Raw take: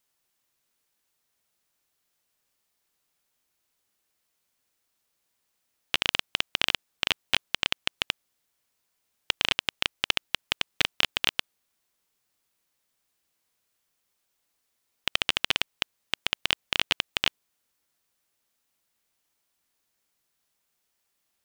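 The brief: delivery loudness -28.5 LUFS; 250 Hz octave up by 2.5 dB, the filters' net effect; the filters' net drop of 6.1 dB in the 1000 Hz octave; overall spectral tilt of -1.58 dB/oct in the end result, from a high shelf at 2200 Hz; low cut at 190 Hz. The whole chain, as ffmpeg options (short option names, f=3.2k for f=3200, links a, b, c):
-af "highpass=190,equalizer=f=250:t=o:g=5.5,equalizer=f=1k:t=o:g=-6.5,highshelf=f=2.2k:g=-7.5,volume=4.5dB"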